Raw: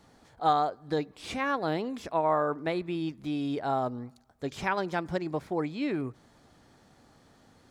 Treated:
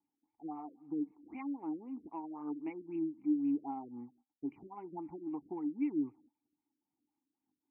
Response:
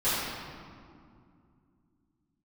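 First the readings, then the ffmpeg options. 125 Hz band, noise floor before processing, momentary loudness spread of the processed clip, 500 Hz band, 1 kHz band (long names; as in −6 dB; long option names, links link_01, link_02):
−19.5 dB, −61 dBFS, 13 LU, −17.0 dB, −18.0 dB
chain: -filter_complex "[0:a]agate=range=-21dB:threshold=-55dB:ratio=16:detection=peak,acompressor=threshold=-28dB:ratio=10,asplit=3[link_01][link_02][link_03];[link_01]bandpass=frequency=300:width_type=q:width=8,volume=0dB[link_04];[link_02]bandpass=frequency=870:width_type=q:width=8,volume=-6dB[link_05];[link_03]bandpass=frequency=2240:width_type=q:width=8,volume=-9dB[link_06];[link_04][link_05][link_06]amix=inputs=3:normalize=0,aphaser=in_gain=1:out_gain=1:delay=3.9:decay=0.37:speed=2:type=sinusoidal,afftfilt=real='re*lt(b*sr/1024,580*pow(3100/580,0.5+0.5*sin(2*PI*3.8*pts/sr)))':imag='im*lt(b*sr/1024,580*pow(3100/580,0.5+0.5*sin(2*PI*3.8*pts/sr)))':win_size=1024:overlap=0.75,volume=1dB"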